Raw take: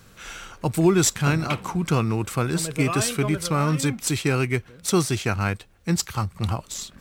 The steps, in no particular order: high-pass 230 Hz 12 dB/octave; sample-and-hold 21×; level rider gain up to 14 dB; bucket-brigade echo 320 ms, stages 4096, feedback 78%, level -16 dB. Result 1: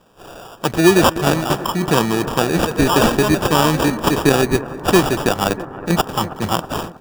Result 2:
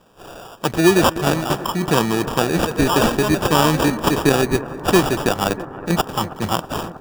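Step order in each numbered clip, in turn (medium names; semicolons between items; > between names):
high-pass > sample-and-hold > bucket-brigade echo > level rider; level rider > high-pass > sample-and-hold > bucket-brigade echo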